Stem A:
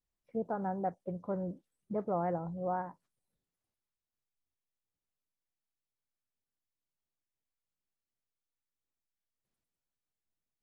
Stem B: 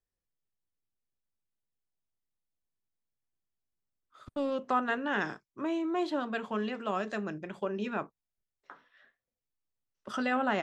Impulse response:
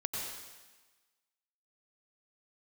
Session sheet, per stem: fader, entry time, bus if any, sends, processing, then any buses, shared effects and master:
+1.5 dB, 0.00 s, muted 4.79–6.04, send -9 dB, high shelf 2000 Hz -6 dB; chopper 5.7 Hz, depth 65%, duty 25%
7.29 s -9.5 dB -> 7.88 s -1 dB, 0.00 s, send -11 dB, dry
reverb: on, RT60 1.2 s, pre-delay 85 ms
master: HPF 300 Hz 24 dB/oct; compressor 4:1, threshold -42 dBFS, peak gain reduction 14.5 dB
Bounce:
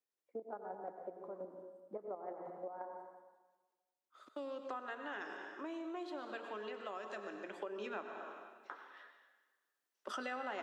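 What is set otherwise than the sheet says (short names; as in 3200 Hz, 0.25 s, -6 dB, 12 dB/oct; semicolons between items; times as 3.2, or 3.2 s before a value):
stem A +1.5 dB -> -5.5 dB; reverb return +7.5 dB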